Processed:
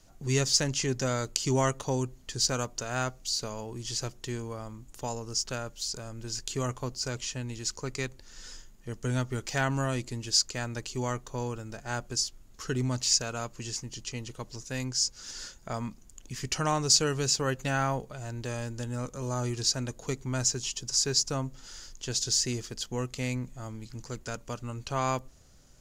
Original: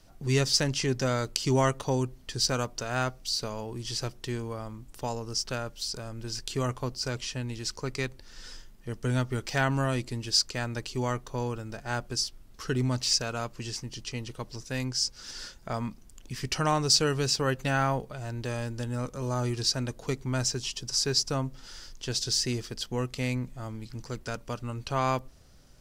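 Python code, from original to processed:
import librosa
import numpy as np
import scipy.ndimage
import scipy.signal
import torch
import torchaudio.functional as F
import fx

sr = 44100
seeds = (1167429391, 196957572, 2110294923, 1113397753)

y = fx.peak_eq(x, sr, hz=6800.0, db=11.5, octaves=0.21)
y = y * 10.0 ** (-2.0 / 20.0)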